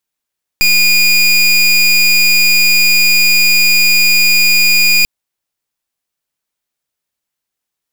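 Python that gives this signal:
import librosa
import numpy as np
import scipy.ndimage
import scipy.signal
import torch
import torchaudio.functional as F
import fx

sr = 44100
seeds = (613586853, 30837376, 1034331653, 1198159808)

y = fx.pulse(sr, length_s=4.44, hz=2440.0, level_db=-9.0, duty_pct=26)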